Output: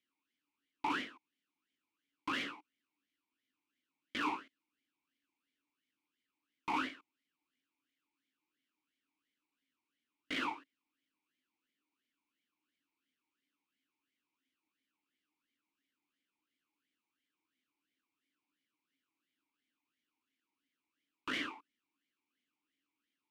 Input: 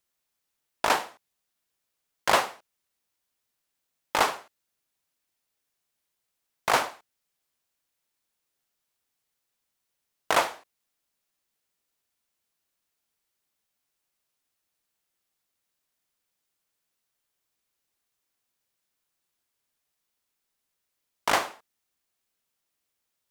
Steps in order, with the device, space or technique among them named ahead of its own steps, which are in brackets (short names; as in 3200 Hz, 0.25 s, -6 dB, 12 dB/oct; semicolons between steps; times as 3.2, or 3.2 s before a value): talk box (tube stage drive 35 dB, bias 0.75; vowel sweep i-u 2.9 Hz); gain +16 dB